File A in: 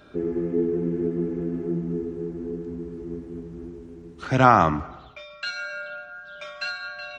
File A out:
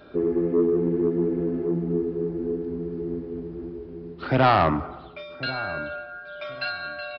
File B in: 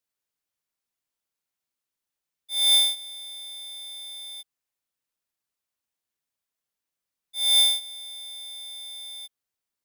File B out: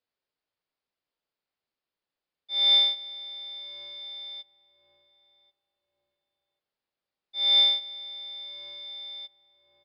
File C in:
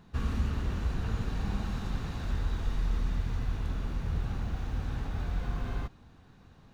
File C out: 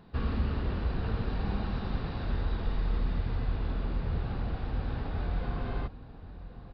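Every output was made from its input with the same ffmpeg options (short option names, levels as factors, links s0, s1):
-filter_complex "[0:a]equalizer=f=510:w=0.83:g=5.5,asoftclip=type=tanh:threshold=0.266,asplit=2[s0][s1];[s1]adelay=1088,lowpass=f=960:p=1,volume=0.2,asplit=2[s2][s3];[s3]adelay=1088,lowpass=f=960:p=1,volume=0.26,asplit=2[s4][s5];[s5]adelay=1088,lowpass=f=960:p=1,volume=0.26[s6];[s2][s4][s6]amix=inputs=3:normalize=0[s7];[s0][s7]amix=inputs=2:normalize=0,aresample=11025,aresample=44100"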